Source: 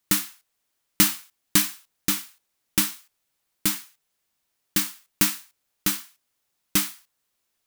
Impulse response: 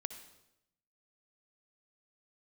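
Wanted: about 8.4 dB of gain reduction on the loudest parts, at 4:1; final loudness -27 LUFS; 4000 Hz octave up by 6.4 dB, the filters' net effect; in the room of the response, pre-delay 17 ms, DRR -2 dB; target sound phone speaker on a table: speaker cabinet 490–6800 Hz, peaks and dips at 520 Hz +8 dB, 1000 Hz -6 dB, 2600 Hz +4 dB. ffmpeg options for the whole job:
-filter_complex "[0:a]equalizer=f=4k:t=o:g=7.5,acompressor=threshold=-22dB:ratio=4,asplit=2[a][b];[1:a]atrim=start_sample=2205,adelay=17[c];[b][c]afir=irnorm=-1:irlink=0,volume=3.5dB[d];[a][d]amix=inputs=2:normalize=0,highpass=f=490:w=0.5412,highpass=f=490:w=1.3066,equalizer=f=520:t=q:w=4:g=8,equalizer=f=1k:t=q:w=4:g=-6,equalizer=f=2.6k:t=q:w=4:g=4,lowpass=f=6.8k:w=0.5412,lowpass=f=6.8k:w=1.3066,volume=1dB"

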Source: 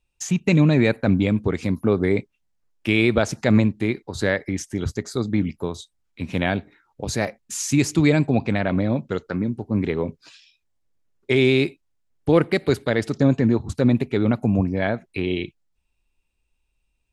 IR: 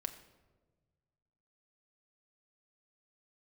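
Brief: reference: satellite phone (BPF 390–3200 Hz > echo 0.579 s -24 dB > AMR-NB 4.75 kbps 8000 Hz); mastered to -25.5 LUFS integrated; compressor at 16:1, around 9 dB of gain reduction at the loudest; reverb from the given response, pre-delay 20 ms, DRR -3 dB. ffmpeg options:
-filter_complex "[0:a]acompressor=threshold=-20dB:ratio=16,asplit=2[a][b];[1:a]atrim=start_sample=2205,adelay=20[c];[b][c]afir=irnorm=-1:irlink=0,volume=4dB[d];[a][d]amix=inputs=2:normalize=0,highpass=390,lowpass=3.2k,aecho=1:1:579:0.0631,volume=4.5dB" -ar 8000 -c:a libopencore_amrnb -b:a 4750

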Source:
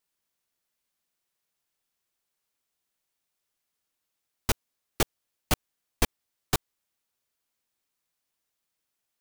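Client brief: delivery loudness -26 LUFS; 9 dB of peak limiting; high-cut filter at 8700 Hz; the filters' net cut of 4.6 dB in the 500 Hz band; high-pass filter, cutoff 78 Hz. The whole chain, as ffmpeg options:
-af "highpass=78,lowpass=8.7k,equalizer=f=500:t=o:g=-6,volume=14.5dB,alimiter=limit=-6.5dB:level=0:latency=1"

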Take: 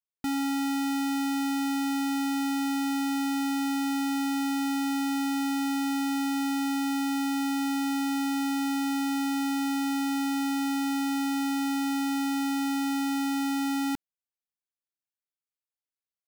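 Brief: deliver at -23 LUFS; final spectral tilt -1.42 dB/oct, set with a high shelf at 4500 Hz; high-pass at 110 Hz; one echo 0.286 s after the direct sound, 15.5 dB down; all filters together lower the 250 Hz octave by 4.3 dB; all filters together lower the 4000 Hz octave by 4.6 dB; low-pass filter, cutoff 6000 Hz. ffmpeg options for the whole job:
-af "highpass=110,lowpass=6k,equalizer=f=250:t=o:g=-4.5,equalizer=f=4k:t=o:g=-8.5,highshelf=f=4.5k:g=6,aecho=1:1:286:0.168,volume=8dB"

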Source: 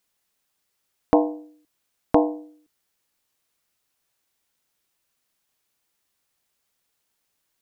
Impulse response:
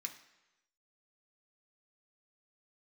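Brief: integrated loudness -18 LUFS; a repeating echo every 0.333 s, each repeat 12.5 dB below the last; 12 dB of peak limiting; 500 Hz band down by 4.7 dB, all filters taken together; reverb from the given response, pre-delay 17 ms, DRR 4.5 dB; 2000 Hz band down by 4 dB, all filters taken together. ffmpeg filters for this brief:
-filter_complex "[0:a]equalizer=f=500:t=o:g=-5.5,equalizer=f=2k:t=o:g=-5,alimiter=limit=-16dB:level=0:latency=1,aecho=1:1:333|666|999:0.237|0.0569|0.0137,asplit=2[a][b];[1:a]atrim=start_sample=2205,adelay=17[c];[b][c]afir=irnorm=-1:irlink=0,volume=-2dB[d];[a][d]amix=inputs=2:normalize=0,volume=14dB"

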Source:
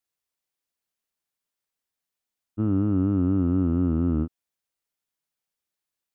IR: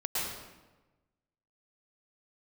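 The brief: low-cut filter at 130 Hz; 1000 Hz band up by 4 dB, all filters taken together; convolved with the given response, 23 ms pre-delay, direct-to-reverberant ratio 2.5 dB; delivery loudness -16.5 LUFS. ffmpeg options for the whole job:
-filter_complex "[0:a]highpass=130,equalizer=f=1k:t=o:g=5.5,asplit=2[a][b];[1:a]atrim=start_sample=2205,adelay=23[c];[b][c]afir=irnorm=-1:irlink=0,volume=-9.5dB[d];[a][d]amix=inputs=2:normalize=0,volume=8dB"

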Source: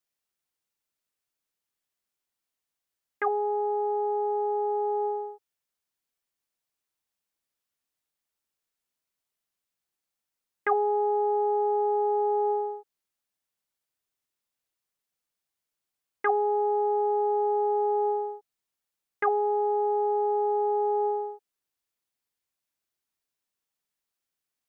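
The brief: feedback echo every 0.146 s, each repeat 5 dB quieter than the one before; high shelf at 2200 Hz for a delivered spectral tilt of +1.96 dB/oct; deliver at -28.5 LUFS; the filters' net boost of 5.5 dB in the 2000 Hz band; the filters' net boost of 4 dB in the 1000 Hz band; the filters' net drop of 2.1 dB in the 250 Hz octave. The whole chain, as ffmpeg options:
-af "equalizer=f=250:t=o:g=-8.5,equalizer=f=1k:t=o:g=5.5,equalizer=f=2k:t=o:g=8.5,highshelf=f=2.2k:g=-7,aecho=1:1:146|292|438|584|730|876|1022:0.562|0.315|0.176|0.0988|0.0553|0.031|0.0173,volume=-2.5dB"

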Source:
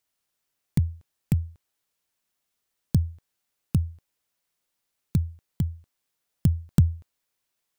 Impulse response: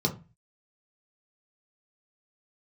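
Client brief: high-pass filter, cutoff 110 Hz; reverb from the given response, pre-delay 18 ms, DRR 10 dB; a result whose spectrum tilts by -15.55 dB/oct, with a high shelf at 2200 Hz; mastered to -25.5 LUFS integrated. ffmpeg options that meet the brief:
-filter_complex "[0:a]highpass=110,highshelf=f=2.2k:g=-9,asplit=2[a][b];[1:a]atrim=start_sample=2205,adelay=18[c];[b][c]afir=irnorm=-1:irlink=0,volume=-18.5dB[d];[a][d]amix=inputs=2:normalize=0,volume=1.5dB"

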